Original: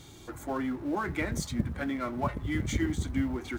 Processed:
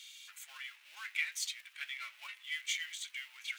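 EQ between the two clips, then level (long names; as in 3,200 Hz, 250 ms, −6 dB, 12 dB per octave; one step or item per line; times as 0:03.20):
four-pole ladder high-pass 2,300 Hz, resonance 55%
+9.5 dB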